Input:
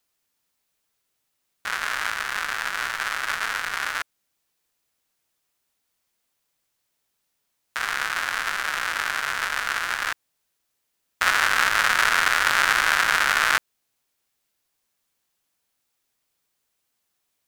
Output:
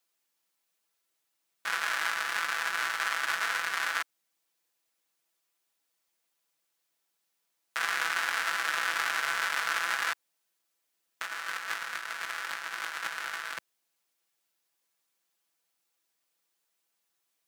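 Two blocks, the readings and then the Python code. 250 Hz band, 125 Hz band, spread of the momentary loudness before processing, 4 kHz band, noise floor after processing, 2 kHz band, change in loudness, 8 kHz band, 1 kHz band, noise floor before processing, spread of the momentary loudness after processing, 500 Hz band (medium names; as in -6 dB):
-11.0 dB, under -15 dB, 10 LU, -8.0 dB, -80 dBFS, -8.5 dB, -8.5 dB, -8.0 dB, -8.5 dB, -76 dBFS, 9 LU, -8.5 dB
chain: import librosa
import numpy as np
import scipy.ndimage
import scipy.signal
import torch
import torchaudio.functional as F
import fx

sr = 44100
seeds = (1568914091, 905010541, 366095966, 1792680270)

y = scipy.signal.sosfilt(scipy.signal.bessel(2, 260.0, 'highpass', norm='mag', fs=sr, output='sos'), x)
y = y + 0.56 * np.pad(y, (int(6.0 * sr / 1000.0), 0))[:len(y)]
y = fx.over_compress(y, sr, threshold_db=-24.0, ratio=-0.5)
y = y * librosa.db_to_amplitude(-7.0)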